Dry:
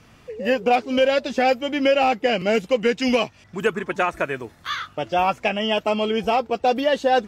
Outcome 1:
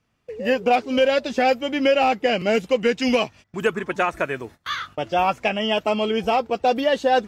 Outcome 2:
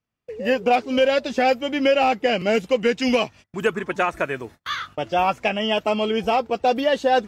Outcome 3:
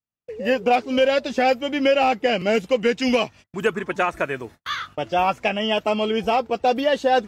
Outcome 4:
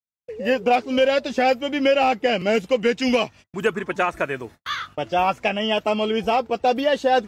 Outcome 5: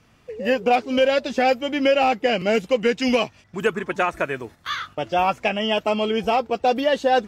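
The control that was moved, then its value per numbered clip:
gate, range: -20 dB, -34 dB, -47 dB, -59 dB, -6 dB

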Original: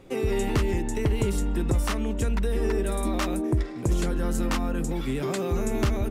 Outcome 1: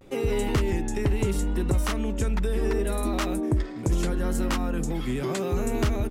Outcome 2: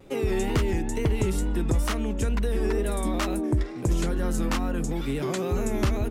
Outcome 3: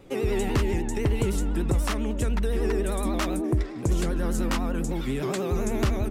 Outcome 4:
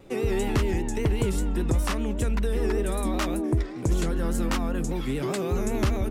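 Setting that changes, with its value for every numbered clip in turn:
vibrato, rate: 0.74 Hz, 2.2 Hz, 10 Hz, 5.1 Hz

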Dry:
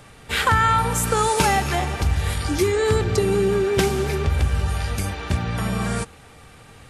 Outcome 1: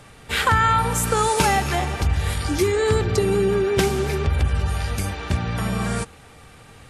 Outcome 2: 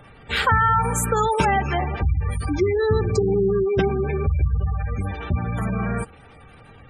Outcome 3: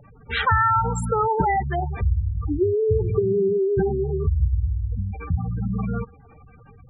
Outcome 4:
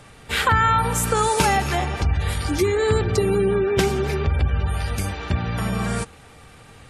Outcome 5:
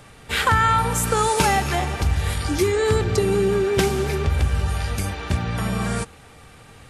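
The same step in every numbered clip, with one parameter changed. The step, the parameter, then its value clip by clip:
spectral gate, under each frame's peak: -45 dB, -20 dB, -10 dB, -35 dB, -60 dB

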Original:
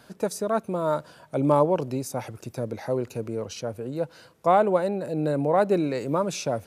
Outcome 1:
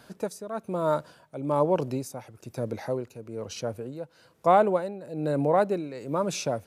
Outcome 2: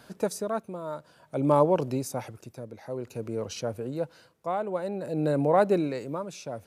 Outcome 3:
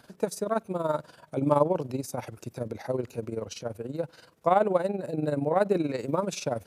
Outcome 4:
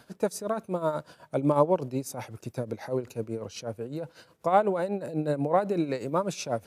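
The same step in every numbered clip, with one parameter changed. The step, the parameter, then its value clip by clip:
tremolo, rate: 1.1 Hz, 0.55 Hz, 21 Hz, 8.1 Hz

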